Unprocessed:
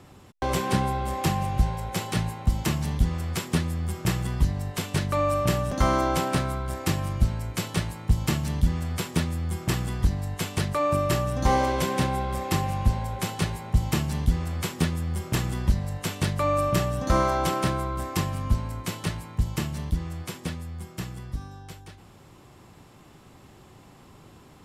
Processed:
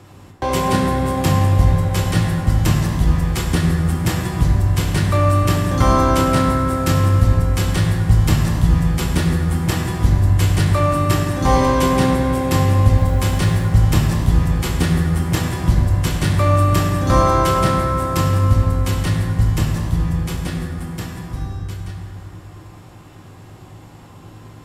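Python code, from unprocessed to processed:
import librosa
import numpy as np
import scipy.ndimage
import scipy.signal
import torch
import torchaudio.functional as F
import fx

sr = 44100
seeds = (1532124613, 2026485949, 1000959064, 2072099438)

y = fx.dmg_noise_colour(x, sr, seeds[0], colour='white', level_db=-59.0, at=(12.97, 13.65), fade=0.02)
y = fx.rev_fdn(y, sr, rt60_s=3.5, lf_ratio=1.0, hf_ratio=0.4, size_ms=57.0, drr_db=-1.0)
y = y * 10.0 ** (4.5 / 20.0)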